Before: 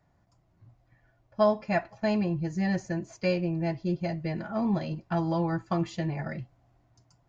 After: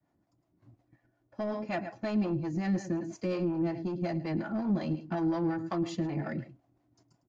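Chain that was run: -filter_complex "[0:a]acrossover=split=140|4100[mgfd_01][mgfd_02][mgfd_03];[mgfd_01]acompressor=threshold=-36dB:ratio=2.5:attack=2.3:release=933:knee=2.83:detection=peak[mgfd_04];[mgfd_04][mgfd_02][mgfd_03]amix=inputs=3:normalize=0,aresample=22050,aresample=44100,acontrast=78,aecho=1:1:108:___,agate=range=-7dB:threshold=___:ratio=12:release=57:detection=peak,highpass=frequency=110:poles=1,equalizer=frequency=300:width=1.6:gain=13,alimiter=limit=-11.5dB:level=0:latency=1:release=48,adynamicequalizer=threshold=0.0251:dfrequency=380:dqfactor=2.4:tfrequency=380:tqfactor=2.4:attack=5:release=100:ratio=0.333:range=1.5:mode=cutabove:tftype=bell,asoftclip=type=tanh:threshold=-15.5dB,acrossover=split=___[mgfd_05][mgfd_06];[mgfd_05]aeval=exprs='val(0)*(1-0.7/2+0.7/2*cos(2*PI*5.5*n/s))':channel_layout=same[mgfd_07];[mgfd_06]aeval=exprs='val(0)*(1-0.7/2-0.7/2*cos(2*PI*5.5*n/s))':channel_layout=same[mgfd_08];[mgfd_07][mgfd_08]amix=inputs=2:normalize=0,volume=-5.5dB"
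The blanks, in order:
0.188, -56dB, 460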